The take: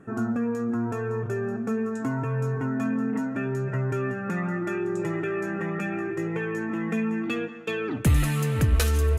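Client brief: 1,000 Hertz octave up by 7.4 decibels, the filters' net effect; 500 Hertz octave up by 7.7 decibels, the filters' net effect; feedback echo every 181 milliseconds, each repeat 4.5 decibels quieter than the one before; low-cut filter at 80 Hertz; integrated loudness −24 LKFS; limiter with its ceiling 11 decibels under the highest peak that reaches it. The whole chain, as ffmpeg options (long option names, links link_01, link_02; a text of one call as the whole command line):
ffmpeg -i in.wav -af "highpass=80,equalizer=frequency=500:width_type=o:gain=8.5,equalizer=frequency=1000:width_type=o:gain=7.5,alimiter=limit=-17.5dB:level=0:latency=1,aecho=1:1:181|362|543|724|905|1086|1267|1448|1629:0.596|0.357|0.214|0.129|0.0772|0.0463|0.0278|0.0167|0.01" out.wav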